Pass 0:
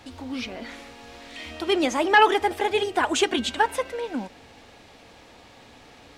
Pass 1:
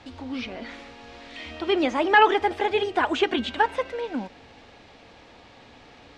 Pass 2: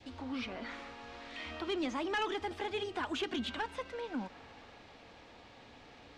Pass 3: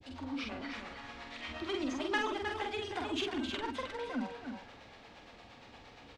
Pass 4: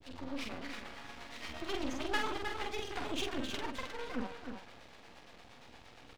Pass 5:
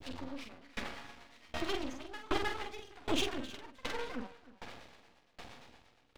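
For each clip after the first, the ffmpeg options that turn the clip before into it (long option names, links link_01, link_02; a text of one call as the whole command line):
ffmpeg -i in.wav -filter_complex "[0:a]acrossover=split=3800[link_01][link_02];[link_02]acompressor=threshold=-41dB:ratio=4:attack=1:release=60[link_03];[link_01][link_03]amix=inputs=2:normalize=0,lowpass=5100" out.wav
ffmpeg -i in.wav -filter_complex "[0:a]acrossover=split=310|3000[link_01][link_02][link_03];[link_02]acompressor=threshold=-38dB:ratio=3[link_04];[link_01][link_04][link_03]amix=inputs=3:normalize=0,adynamicequalizer=threshold=0.00282:dfrequency=1200:dqfactor=1.3:tfrequency=1200:tqfactor=1.3:attack=5:release=100:ratio=0.375:range=4:mode=boostabove:tftype=bell,asoftclip=type=tanh:threshold=-21.5dB,volume=-6dB" out.wav
ffmpeg -i in.wav -filter_complex "[0:a]acrossover=split=420[link_01][link_02];[link_01]aeval=exprs='val(0)*(1-1/2+1/2*cos(2*PI*8.6*n/s))':channel_layout=same[link_03];[link_02]aeval=exprs='val(0)*(1-1/2-1/2*cos(2*PI*8.6*n/s))':channel_layout=same[link_04];[link_03][link_04]amix=inputs=2:normalize=0,asplit=2[link_05][link_06];[link_06]adelay=46,volume=-3.5dB[link_07];[link_05][link_07]amix=inputs=2:normalize=0,aecho=1:1:311:0.447,volume=3.5dB" out.wav
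ffmpeg -i in.wav -af "aeval=exprs='max(val(0),0)':channel_layout=same,volume=2.5dB" out.wav
ffmpeg -i in.wav -af "aeval=exprs='val(0)*pow(10,-27*if(lt(mod(1.3*n/s,1),2*abs(1.3)/1000),1-mod(1.3*n/s,1)/(2*abs(1.3)/1000),(mod(1.3*n/s,1)-2*abs(1.3)/1000)/(1-2*abs(1.3)/1000))/20)':channel_layout=same,volume=8.5dB" out.wav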